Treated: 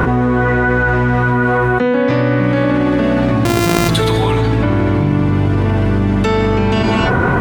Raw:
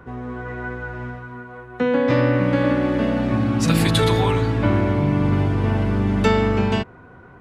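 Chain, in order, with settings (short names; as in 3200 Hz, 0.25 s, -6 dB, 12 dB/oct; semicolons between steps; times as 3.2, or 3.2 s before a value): 3.45–3.89 sample sorter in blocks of 128 samples; non-linear reverb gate 0.29 s flat, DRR 11.5 dB; fast leveller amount 100%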